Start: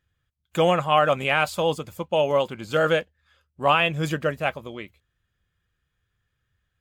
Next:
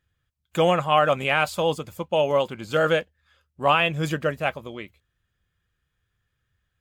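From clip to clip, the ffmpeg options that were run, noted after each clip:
ffmpeg -i in.wav -af "deesser=0.5" out.wav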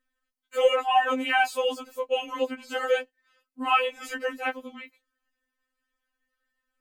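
ffmpeg -i in.wav -af "bandreject=frequency=3500:width=7.8,afftfilt=real='re*3.46*eq(mod(b,12),0)':imag='im*3.46*eq(mod(b,12),0)':win_size=2048:overlap=0.75" out.wav

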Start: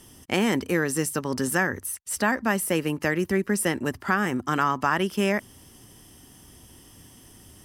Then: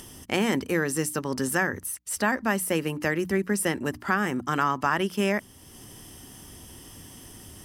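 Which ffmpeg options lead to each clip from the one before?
ffmpeg -i in.wav -filter_complex "[0:a]bandreject=frequency=60:width_type=h:width=6,bandreject=frequency=120:width_type=h:width=6,bandreject=frequency=180:width_type=h:width=6,bandreject=frequency=240:width_type=h:width=6,bandreject=frequency=300:width_type=h:width=6,asplit=2[link_01][link_02];[link_02]acompressor=mode=upward:threshold=-29dB:ratio=2.5,volume=-2.5dB[link_03];[link_01][link_03]amix=inputs=2:normalize=0,volume=-6dB" out.wav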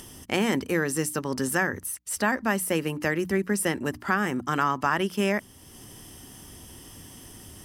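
ffmpeg -i in.wav -af anull out.wav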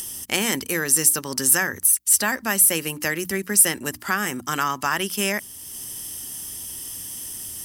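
ffmpeg -i in.wav -af "crystalizer=i=6:c=0,volume=-2.5dB" out.wav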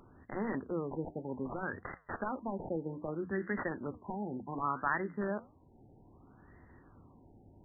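ffmpeg -i in.wav -af "aeval=exprs='(mod(3.16*val(0)+1,2)-1)/3.16':channel_layout=same,flanger=delay=5.8:depth=8.2:regen=-84:speed=1.6:shape=triangular,afftfilt=real='re*lt(b*sr/1024,900*pow(2100/900,0.5+0.5*sin(2*PI*0.64*pts/sr)))':imag='im*lt(b*sr/1024,900*pow(2100/900,0.5+0.5*sin(2*PI*0.64*pts/sr)))':win_size=1024:overlap=0.75,volume=-3.5dB" out.wav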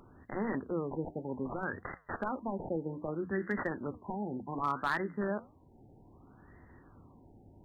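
ffmpeg -i in.wav -af "asoftclip=type=hard:threshold=-24.5dB,volume=1.5dB" out.wav

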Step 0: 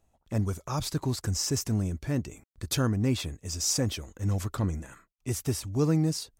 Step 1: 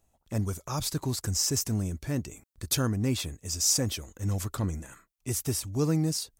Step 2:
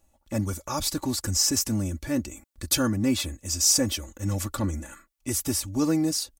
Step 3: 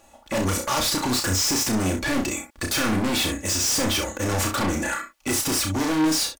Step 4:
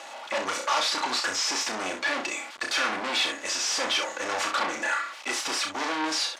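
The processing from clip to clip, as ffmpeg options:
ffmpeg -i in.wav -af "highshelf=frequency=5600:gain=8.5,volume=-1.5dB" out.wav
ffmpeg -i in.wav -af "aecho=1:1:3.5:0.72,volume=2.5dB" out.wav
ffmpeg -i in.wav -filter_complex "[0:a]asplit=2[link_01][link_02];[link_02]highpass=frequency=720:poles=1,volume=21dB,asoftclip=type=tanh:threshold=-7.5dB[link_03];[link_01][link_03]amix=inputs=2:normalize=0,lowpass=frequency=2800:poles=1,volume=-6dB,asoftclip=type=hard:threshold=-28.5dB,asplit=2[link_04][link_05];[link_05]aecho=0:1:32.07|64.14:0.562|0.355[link_06];[link_04][link_06]amix=inputs=2:normalize=0,volume=5.5dB" out.wav
ffmpeg -i in.wav -af "aeval=exprs='val(0)+0.5*0.0237*sgn(val(0))':channel_layout=same,highpass=680,lowpass=4600" out.wav

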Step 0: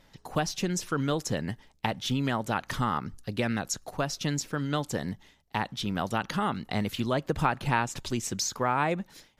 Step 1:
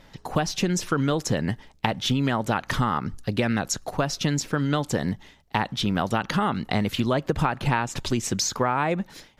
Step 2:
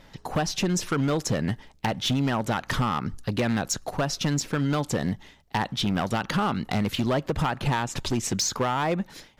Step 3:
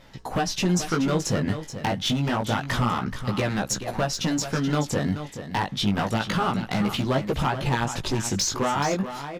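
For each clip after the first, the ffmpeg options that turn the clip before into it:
ffmpeg -i in.wav -af "highshelf=frequency=5600:gain=-6,acompressor=threshold=-28dB:ratio=4,volume=8.5dB" out.wav
ffmpeg -i in.wav -af "asoftclip=type=hard:threshold=-19dB" out.wav
ffmpeg -i in.wav -af "flanger=delay=15:depth=6:speed=0.28,aecho=1:1:429:0.299,volume=4dB" out.wav

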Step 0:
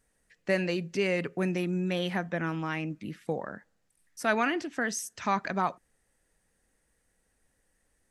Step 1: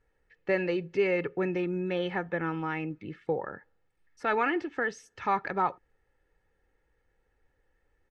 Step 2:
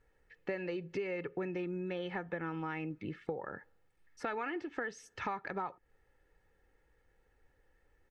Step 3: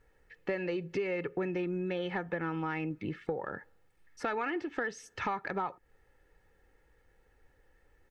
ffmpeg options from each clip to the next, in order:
ffmpeg -i in.wav -af "lowpass=2500,aecho=1:1:2.3:0.57" out.wav
ffmpeg -i in.wav -af "acompressor=threshold=-37dB:ratio=6,volume=1.5dB" out.wav
ffmpeg -i in.wav -af "asoftclip=type=tanh:threshold=-24dB,volume=4.5dB" out.wav

